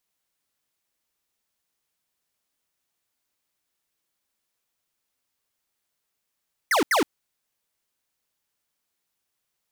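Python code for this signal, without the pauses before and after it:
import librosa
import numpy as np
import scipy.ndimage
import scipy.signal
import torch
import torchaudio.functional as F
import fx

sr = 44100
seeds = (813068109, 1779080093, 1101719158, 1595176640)

y = fx.laser_zaps(sr, level_db=-20.0, start_hz=2200.0, end_hz=250.0, length_s=0.12, wave='square', shots=2, gap_s=0.08)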